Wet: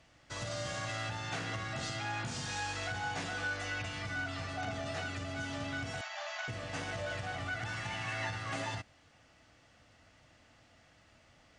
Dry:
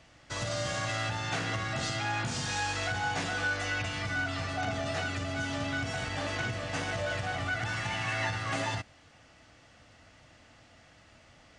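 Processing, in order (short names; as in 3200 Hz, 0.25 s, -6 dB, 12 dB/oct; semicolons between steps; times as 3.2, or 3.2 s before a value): 6.01–6.48 brick-wall FIR band-pass 560–7500 Hz; gain -5.5 dB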